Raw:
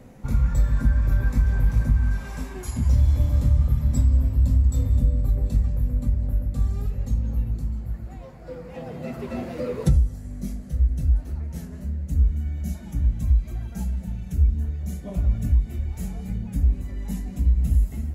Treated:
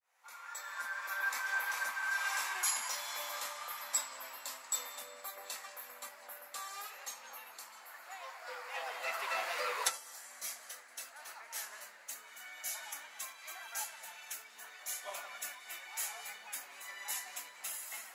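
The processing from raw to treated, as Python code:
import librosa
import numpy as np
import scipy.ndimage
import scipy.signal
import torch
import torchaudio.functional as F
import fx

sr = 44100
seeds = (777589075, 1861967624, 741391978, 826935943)

y = fx.fade_in_head(x, sr, length_s=1.64)
y = scipy.signal.sosfilt(scipy.signal.butter(4, 950.0, 'highpass', fs=sr, output='sos'), y)
y = y * librosa.db_to_amplitude(8.5)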